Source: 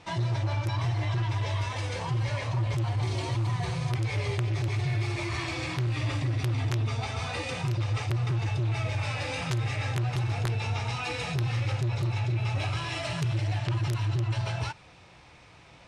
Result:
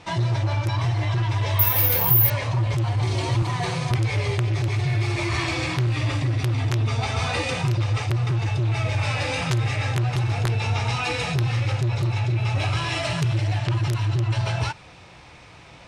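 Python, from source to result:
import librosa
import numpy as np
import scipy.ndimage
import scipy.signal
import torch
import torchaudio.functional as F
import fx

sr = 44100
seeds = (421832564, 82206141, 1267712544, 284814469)

y = fx.highpass(x, sr, hz=160.0, slope=12, at=(3.42, 3.91))
y = fx.rider(y, sr, range_db=10, speed_s=0.5)
y = fx.resample_bad(y, sr, factor=3, down='filtered', up='zero_stuff', at=(1.59, 2.3))
y = y * librosa.db_to_amplitude(6.0)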